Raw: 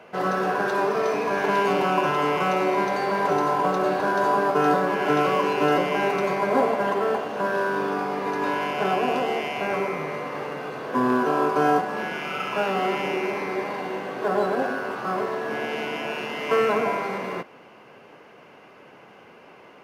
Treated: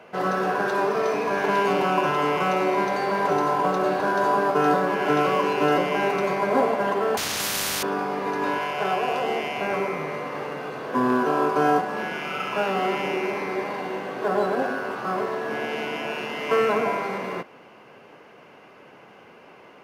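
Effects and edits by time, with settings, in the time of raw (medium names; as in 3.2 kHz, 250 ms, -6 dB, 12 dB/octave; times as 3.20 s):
7.17–7.83 s: spectrum-flattening compressor 10:1
8.58–9.24 s: peaking EQ 250 Hz -11 dB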